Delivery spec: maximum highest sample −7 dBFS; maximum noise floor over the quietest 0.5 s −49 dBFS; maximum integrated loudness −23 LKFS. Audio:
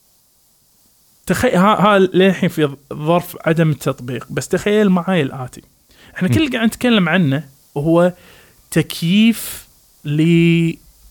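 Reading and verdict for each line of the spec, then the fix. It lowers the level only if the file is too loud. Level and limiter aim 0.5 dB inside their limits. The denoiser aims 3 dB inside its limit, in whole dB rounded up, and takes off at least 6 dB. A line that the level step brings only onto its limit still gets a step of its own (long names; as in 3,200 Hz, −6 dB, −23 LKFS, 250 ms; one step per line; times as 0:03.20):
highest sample −3.5 dBFS: out of spec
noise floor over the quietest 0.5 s −56 dBFS: in spec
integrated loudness −16.0 LKFS: out of spec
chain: level −7.5 dB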